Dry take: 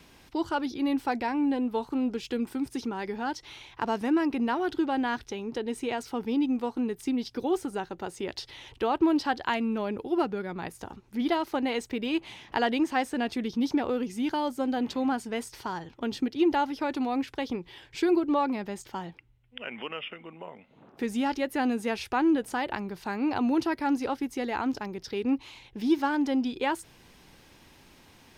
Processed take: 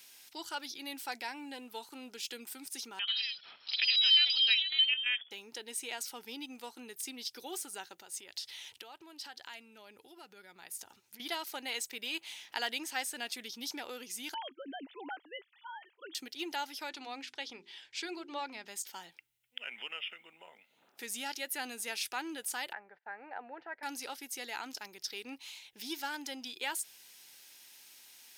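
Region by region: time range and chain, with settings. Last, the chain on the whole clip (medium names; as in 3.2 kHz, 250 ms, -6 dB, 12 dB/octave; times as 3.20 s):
2.99–5.31 s: square tremolo 2.9 Hz, depth 65%, duty 65% + frequency inversion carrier 3.4 kHz + ever faster or slower copies 88 ms, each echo +4 st, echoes 2, each echo -6 dB
8.00–11.20 s: peaking EQ 96 Hz +7 dB 0.69 oct + compression 3:1, threshold -39 dBFS
14.34–16.15 s: formants replaced by sine waves + low-pass 1.8 kHz 6 dB/octave
16.89–18.68 s: low-pass 5.5 kHz + hum notches 50/100/150/200/250/300/350/400 Hz
22.73–23.83 s: gate -45 dBFS, range -23 dB + four-pole ladder low-pass 1.9 kHz, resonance 65% + high-order bell 610 Hz +12 dB 1.2 oct
whole clip: differentiator; band-stop 1.1 kHz, Q 8.1; trim +7 dB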